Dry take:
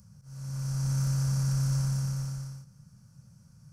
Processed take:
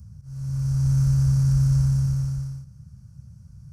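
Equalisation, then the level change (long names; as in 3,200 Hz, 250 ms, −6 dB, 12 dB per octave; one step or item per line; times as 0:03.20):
parametric band 67 Hz +13.5 dB 1.5 octaves
low-shelf EQ 150 Hz +9.5 dB
−2.0 dB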